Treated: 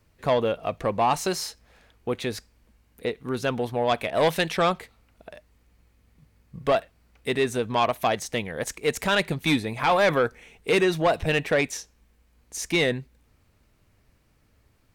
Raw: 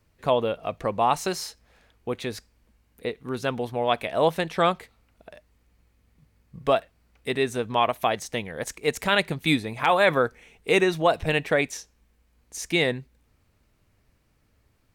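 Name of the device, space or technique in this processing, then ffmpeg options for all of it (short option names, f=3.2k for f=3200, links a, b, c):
saturation between pre-emphasis and de-emphasis: -filter_complex "[0:a]highshelf=f=8.2k:g=10,asoftclip=type=tanh:threshold=-16.5dB,highshelf=f=8.2k:g=-10,asettb=1/sr,asplit=3[a][b][c];[a]atrim=end=4.104[d];[b]atrim=start=4.1:end=4.57,asetpts=PTS-STARTPTS,afade=t=in:d=0.004:c=qsin,afade=t=out:st=0.466:d=0.004:c=qsin,adynamicequalizer=threshold=0.01:dfrequency=1600:dqfactor=0.7:tfrequency=1600:tqfactor=0.7:attack=5:release=100:ratio=0.375:range=3:mode=boostabove:tftype=highshelf[e];[c]atrim=start=4.566[f];[d][e]acrossfade=d=0.004:c1=hsin:c2=qsin[g];[g][f]acrossfade=d=0.004:c1=qsin:c2=hsin,volume=2.5dB"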